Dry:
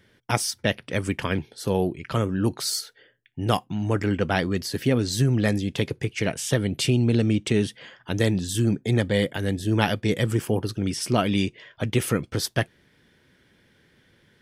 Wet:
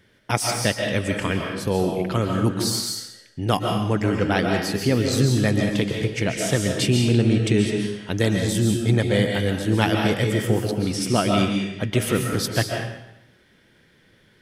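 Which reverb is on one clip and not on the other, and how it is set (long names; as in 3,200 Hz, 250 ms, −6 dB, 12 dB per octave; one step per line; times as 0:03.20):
comb and all-pass reverb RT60 0.84 s, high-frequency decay 0.95×, pre-delay 100 ms, DRR 1.5 dB
level +1 dB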